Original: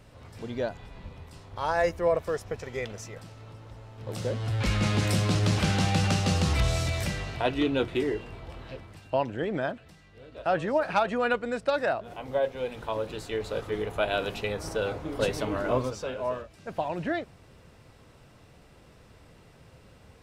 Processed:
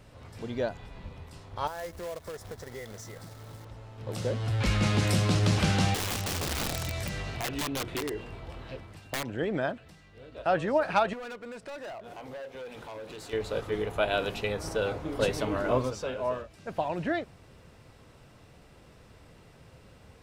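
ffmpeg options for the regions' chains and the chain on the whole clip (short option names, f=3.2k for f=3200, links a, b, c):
-filter_complex "[0:a]asettb=1/sr,asplit=3[a][b][c];[a]atrim=end=1.674[d];[b]atrim=start=1.67:end=3.65,asetpts=PTS-STARTPTS,afade=t=in:d=0.004:c=qsin,afade=t=out:st=1.976:d=0.004:c=qsin,asuperstop=centerf=2700:order=20:qfactor=2.6,acrusher=bits=2:mode=log:mix=0:aa=0.000001,acompressor=threshold=-39dB:ratio=3:attack=3.2:release=140:knee=1:detection=peak[e];[c]atrim=start=3.646[f];[d][e]acrossfade=d=0.004:c1=hsin:c2=qsin[g];[g][f]acrossfade=d=0.004:c1=qsin:c2=hsin,asettb=1/sr,asplit=3[h][i][j];[h]atrim=end=5.944[k];[i]atrim=start=5.94:end=9.33,asetpts=PTS-STARTPTS,afade=t=in:d=0.004:c=qsin,afade=t=out:st=3.386:d=0.004:c=qsin,aeval=exprs='(mod(10*val(0)+1,2)-1)/10':c=same,acompressor=threshold=-30dB:ratio=4:attack=3.2:release=140:knee=1:detection=peak[l];[j]atrim=start=9.326[m];[k][l]acrossfade=d=0.004:c1=hsin:c2=qsin[n];[n][m]acrossfade=d=0.004:c1=qsin:c2=hsin,asettb=1/sr,asplit=3[o][p][q];[o]atrim=end=11.134[r];[p]atrim=start=11.13:end=13.33,asetpts=PTS-STARTPTS,afade=t=in:d=0.004:c=qsin,afade=t=out:st=2.196:d=0.004:c=qsin,lowshelf=f=130:g=-10.5,acompressor=threshold=-39dB:ratio=2:attack=3.2:release=140:knee=1:detection=peak,asoftclip=type=hard:threshold=-37.5dB[s];[q]atrim=start=13.326[t];[r][s]acrossfade=d=0.004:c1=hsin:c2=qsin[u];[u][t]acrossfade=d=0.004:c1=qsin:c2=hsin"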